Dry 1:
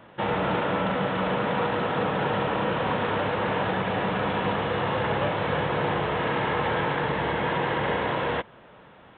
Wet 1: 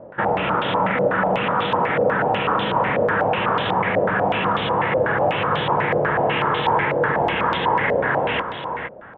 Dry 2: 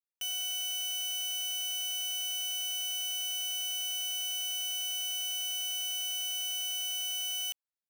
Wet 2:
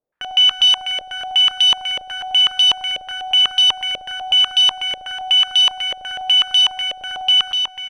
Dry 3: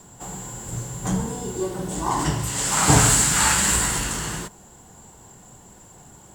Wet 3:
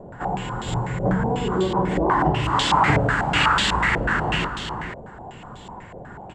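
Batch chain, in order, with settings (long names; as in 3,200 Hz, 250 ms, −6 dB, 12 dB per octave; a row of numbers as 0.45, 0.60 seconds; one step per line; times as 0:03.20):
downward compressor 3 to 1, threshold −27 dBFS
on a send: single-tap delay 464 ms −7.5 dB
on the sum: low-pass on a step sequencer 8.1 Hz 580–3,500 Hz
normalise the peak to −6 dBFS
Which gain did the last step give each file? +5.0, +17.0, +7.0 decibels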